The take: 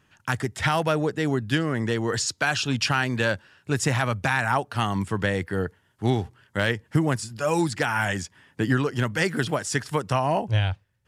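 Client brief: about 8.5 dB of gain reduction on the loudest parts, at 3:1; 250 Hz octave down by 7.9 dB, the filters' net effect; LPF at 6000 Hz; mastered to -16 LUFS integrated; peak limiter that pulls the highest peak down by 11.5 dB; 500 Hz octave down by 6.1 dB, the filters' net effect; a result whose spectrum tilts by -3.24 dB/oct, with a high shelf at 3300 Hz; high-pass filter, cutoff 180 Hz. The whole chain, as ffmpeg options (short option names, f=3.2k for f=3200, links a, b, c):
-af "highpass=180,lowpass=6k,equalizer=f=250:t=o:g=-7,equalizer=f=500:t=o:g=-6,highshelf=f=3.3k:g=7.5,acompressor=threshold=-30dB:ratio=3,volume=20.5dB,alimiter=limit=-4dB:level=0:latency=1"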